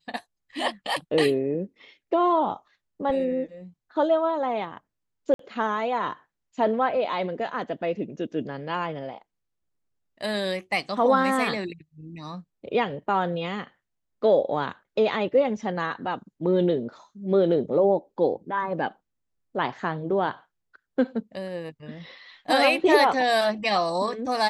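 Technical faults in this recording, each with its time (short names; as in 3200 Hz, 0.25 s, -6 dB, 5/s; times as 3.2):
5.34–5.39 gap 53 ms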